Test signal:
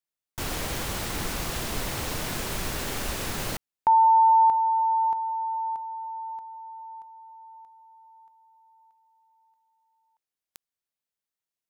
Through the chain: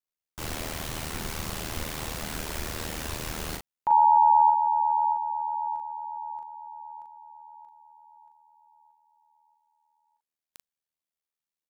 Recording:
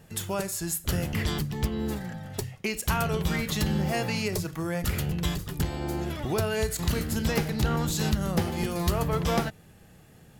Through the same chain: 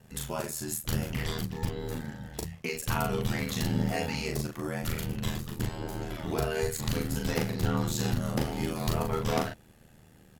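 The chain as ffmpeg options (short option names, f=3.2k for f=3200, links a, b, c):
-filter_complex "[0:a]asplit=2[a][b];[b]adelay=39,volume=-3.5dB[c];[a][c]amix=inputs=2:normalize=0,aeval=exprs='val(0)*sin(2*PI*39*n/s)':c=same,volume=-2dB"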